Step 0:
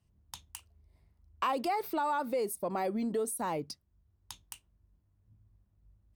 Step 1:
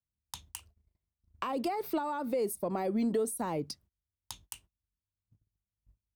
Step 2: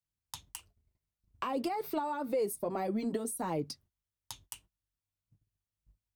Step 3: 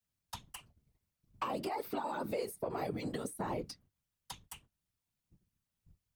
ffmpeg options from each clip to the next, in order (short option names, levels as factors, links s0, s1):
-filter_complex "[0:a]agate=range=0.0447:threshold=0.00112:ratio=16:detection=peak,acrossover=split=460[s0][s1];[s1]acompressor=threshold=0.0112:ratio=5[s2];[s0][s2]amix=inputs=2:normalize=0,volume=1.5"
-af "flanger=delay=6.1:depth=1.9:regen=-40:speed=1.7:shape=sinusoidal,volume=1.41"
-filter_complex "[0:a]afftfilt=real='hypot(re,im)*cos(2*PI*random(0))':imag='hypot(re,im)*sin(2*PI*random(1))':win_size=512:overlap=0.75,acrossover=split=1100|2800[s0][s1][s2];[s0]acompressor=threshold=0.00501:ratio=4[s3];[s1]acompressor=threshold=0.00178:ratio=4[s4];[s2]acompressor=threshold=0.00112:ratio=4[s5];[s3][s4][s5]amix=inputs=3:normalize=0,volume=2.99"